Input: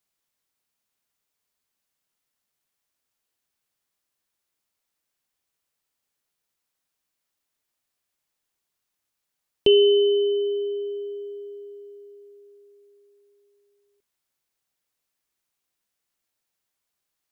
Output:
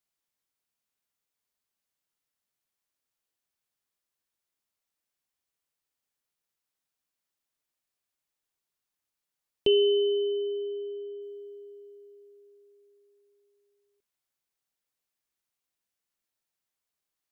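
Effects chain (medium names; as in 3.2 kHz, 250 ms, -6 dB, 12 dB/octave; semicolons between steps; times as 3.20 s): 10.18–11.22 s: loudest bins only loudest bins 64; trim -6 dB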